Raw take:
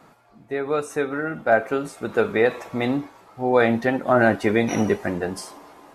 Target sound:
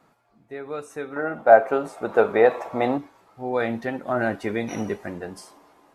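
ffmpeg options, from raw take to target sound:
ffmpeg -i in.wav -filter_complex "[0:a]dynaudnorm=framelen=370:gausssize=7:maxgain=4dB,asettb=1/sr,asplit=3[link_01][link_02][link_03];[link_01]atrim=end=1.164[link_04];[link_02]atrim=start=1.16:end=2.98,asetpts=PTS-STARTPTS,afade=type=in:duration=0.004:curve=qsin,afade=type=out:start_time=1.816:duration=0.004:curve=qsin,equalizer=frequency=740:width=0.69:gain=14[link_05];[link_03]atrim=start=2.976[link_06];[link_04][link_05]acrossfade=duration=0.004:curve1=hsin:curve2=qsin[link_07];[link_07][link_06]acrossfade=duration=0.004:curve1=qsin:curve2=hsin,volume=-9dB" out.wav

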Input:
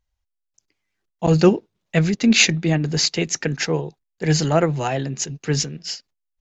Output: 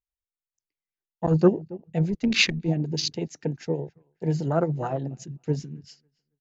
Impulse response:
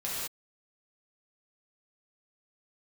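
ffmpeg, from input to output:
-filter_complex "[0:a]acrossover=split=1700[link_01][link_02];[link_01]aeval=exprs='val(0)*(1-0.5/2+0.5/2*cos(2*PI*8.9*n/s))':channel_layout=same[link_03];[link_02]aeval=exprs='val(0)*(1-0.5/2-0.5/2*cos(2*PI*8.9*n/s))':channel_layout=same[link_04];[link_03][link_04]amix=inputs=2:normalize=0,asplit=2[link_05][link_06];[link_06]adelay=275,lowpass=frequency=1600:poles=1,volume=-19dB,asplit=2[link_07][link_08];[link_08]adelay=275,lowpass=frequency=1600:poles=1,volume=0.33,asplit=2[link_09][link_10];[link_10]adelay=275,lowpass=frequency=1600:poles=1,volume=0.33[link_11];[link_07][link_09][link_11]amix=inputs=3:normalize=0[link_12];[link_05][link_12]amix=inputs=2:normalize=0,asplit=3[link_13][link_14][link_15];[link_13]afade=type=out:start_time=2.1:duration=0.02[link_16];[link_14]asubboost=boost=6:cutoff=77,afade=type=in:start_time=2.1:duration=0.02,afade=type=out:start_time=2.67:duration=0.02[link_17];[link_15]afade=type=in:start_time=2.67:duration=0.02[link_18];[link_16][link_17][link_18]amix=inputs=3:normalize=0,afwtdn=0.0501,volume=-3dB"

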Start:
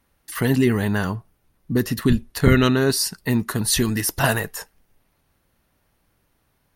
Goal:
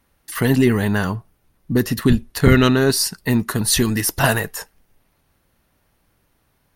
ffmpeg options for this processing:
ffmpeg -i in.wav -af "asoftclip=type=tanh:threshold=-6dB,aeval=exprs='0.473*(cos(1*acos(clip(val(0)/0.473,-1,1)))-cos(1*PI/2))+0.0266*(cos(2*acos(clip(val(0)/0.473,-1,1)))-cos(2*PI/2))+0.0376*(cos(3*acos(clip(val(0)/0.473,-1,1)))-cos(3*PI/2))+0.0106*(cos(4*acos(clip(val(0)/0.473,-1,1)))-cos(4*PI/2))+0.00376*(cos(8*acos(clip(val(0)/0.473,-1,1)))-cos(8*PI/2))':channel_layout=same,volume=5dB" out.wav

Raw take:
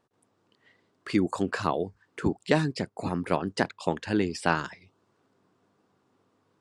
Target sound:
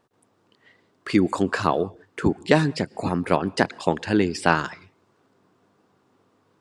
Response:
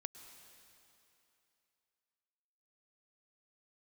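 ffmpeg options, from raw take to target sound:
-filter_complex "[0:a]asplit=2[link_01][link_02];[link_02]bass=frequency=250:gain=-4,treble=frequency=4000:gain=-6[link_03];[1:a]atrim=start_sample=2205,afade=type=out:start_time=0.25:duration=0.01,atrim=end_sample=11466[link_04];[link_03][link_04]afir=irnorm=-1:irlink=0,volume=-5.5dB[link_05];[link_01][link_05]amix=inputs=2:normalize=0,volume=3.5dB"

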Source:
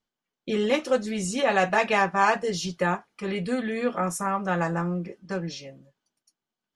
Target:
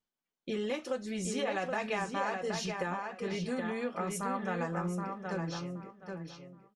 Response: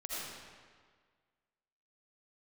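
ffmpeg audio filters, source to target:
-filter_complex "[0:a]acompressor=threshold=-24dB:ratio=6,asplit=2[link_01][link_02];[link_02]adelay=773,lowpass=frequency=3700:poles=1,volume=-4.5dB,asplit=2[link_03][link_04];[link_04]adelay=773,lowpass=frequency=3700:poles=1,volume=0.23,asplit=2[link_05][link_06];[link_06]adelay=773,lowpass=frequency=3700:poles=1,volume=0.23[link_07];[link_01][link_03][link_05][link_07]amix=inputs=4:normalize=0,volume=-6.5dB"

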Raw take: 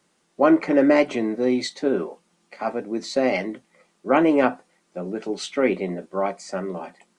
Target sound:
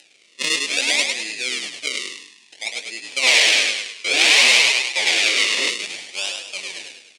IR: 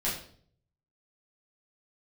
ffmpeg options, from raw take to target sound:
-filter_complex "[0:a]acrusher=samples=38:mix=1:aa=0.000001:lfo=1:lforange=38:lforate=0.59,asplit=7[link_01][link_02][link_03][link_04][link_05][link_06][link_07];[link_02]adelay=102,afreqshift=-43,volume=-4dB[link_08];[link_03]adelay=204,afreqshift=-86,volume=-11.1dB[link_09];[link_04]adelay=306,afreqshift=-129,volume=-18.3dB[link_10];[link_05]adelay=408,afreqshift=-172,volume=-25.4dB[link_11];[link_06]adelay=510,afreqshift=-215,volume=-32.5dB[link_12];[link_07]adelay=612,afreqshift=-258,volume=-39.7dB[link_13];[link_01][link_08][link_09][link_10][link_11][link_12][link_13]amix=inputs=7:normalize=0,asplit=3[link_14][link_15][link_16];[link_14]afade=type=out:start_time=3.22:duration=0.02[link_17];[link_15]asplit=2[link_18][link_19];[link_19]highpass=frequency=720:poles=1,volume=31dB,asoftclip=type=tanh:threshold=-5dB[link_20];[link_18][link_20]amix=inputs=2:normalize=0,lowpass=frequency=5500:poles=1,volume=-6dB,afade=type=in:start_time=3.22:duration=0.02,afade=type=out:start_time=5.68:duration=0.02[link_21];[link_16]afade=type=in:start_time=5.68:duration=0.02[link_22];[link_17][link_21][link_22]amix=inputs=3:normalize=0,aresample=22050,aresample=44100,acompressor=mode=upward:threshold=-33dB:ratio=2.5,highpass=420,aemphasis=mode=reproduction:type=50kf,aexciter=amount=11.2:drive=7.1:freq=2100,equalizer=frequency=2300:width=4.9:gain=6.5,volume=-13.5dB"

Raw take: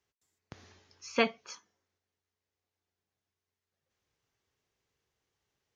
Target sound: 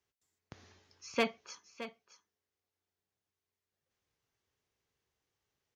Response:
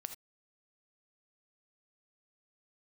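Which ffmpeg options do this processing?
-filter_complex "[0:a]volume=18.5dB,asoftclip=hard,volume=-18.5dB,asplit=2[link_01][link_02];[link_02]aecho=0:1:618:0.224[link_03];[link_01][link_03]amix=inputs=2:normalize=0,volume=-3dB"

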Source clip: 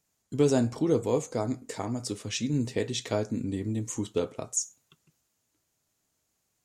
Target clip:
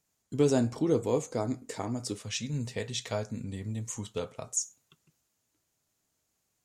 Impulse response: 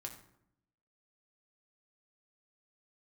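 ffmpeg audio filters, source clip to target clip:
-filter_complex "[0:a]asettb=1/sr,asplit=3[link_01][link_02][link_03];[link_01]atrim=end=2.194[link_04];[link_02]atrim=start=2.19:end=4.46,asetpts=PTS-STARTPTS,afade=type=in:duration=0.004:curve=qsin,afade=type=out:start_time=2.266:duration=0.004:curve=qsin,equalizer=frequency=320:width=2:gain=-13.5[link_05];[link_03]atrim=start=4.456[link_06];[link_04][link_05]acrossfade=duration=0.004:curve1=hsin:curve2=qsin[link_07];[link_07][link_06]acrossfade=duration=0.004:curve1=qsin:curve2=hsin,volume=-1.5dB"

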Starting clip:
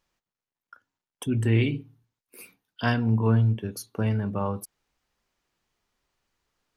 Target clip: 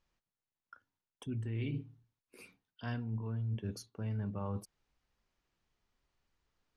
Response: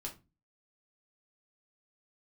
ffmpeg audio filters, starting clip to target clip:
-af "lowpass=6800,lowshelf=frequency=150:gain=8,areverse,acompressor=threshold=-28dB:ratio=12,areverse,volume=-6dB"

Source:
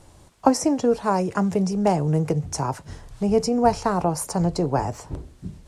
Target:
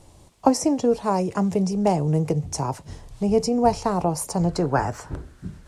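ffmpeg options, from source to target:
ffmpeg -i in.wav -af "asetnsamples=nb_out_samples=441:pad=0,asendcmd='4.49 equalizer g 10.5',equalizer=frequency=1500:width_type=o:width=0.64:gain=-6.5" out.wav

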